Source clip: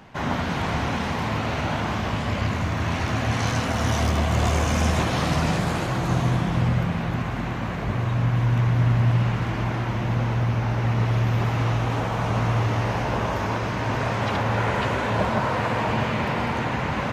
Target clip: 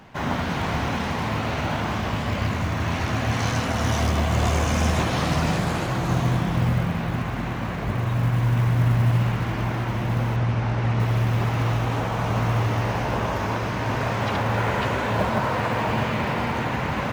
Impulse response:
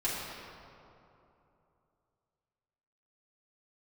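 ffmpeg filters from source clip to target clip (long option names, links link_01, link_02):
-filter_complex "[0:a]acrusher=bits=8:mode=log:mix=0:aa=0.000001,asettb=1/sr,asplit=3[link_01][link_02][link_03];[link_01]atrim=end=10.364[link_04];[link_02]atrim=start=10.36:end=11,asetpts=PTS-STARTPTS,afade=type=in:duration=0.004:curve=qsin,afade=type=out:start_time=0.636:duration=0.004:curve=qsin,lowpass=6300[link_05];[link_03]atrim=start=10.996[link_06];[link_04][link_05]acrossfade=duration=0.004:curve1=hsin:curve2=qsin[link_07];[link_07][link_06]acrossfade=duration=0.004:curve1=qsin:curve2=hsin"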